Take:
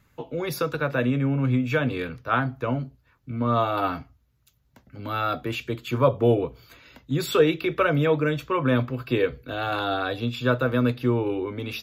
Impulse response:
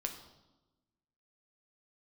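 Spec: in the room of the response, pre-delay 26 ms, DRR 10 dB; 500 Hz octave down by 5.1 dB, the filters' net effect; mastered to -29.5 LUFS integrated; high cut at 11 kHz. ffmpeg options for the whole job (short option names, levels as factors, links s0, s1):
-filter_complex "[0:a]lowpass=11000,equalizer=f=500:t=o:g=-6,asplit=2[s0][s1];[1:a]atrim=start_sample=2205,adelay=26[s2];[s1][s2]afir=irnorm=-1:irlink=0,volume=0.316[s3];[s0][s3]amix=inputs=2:normalize=0,volume=0.708"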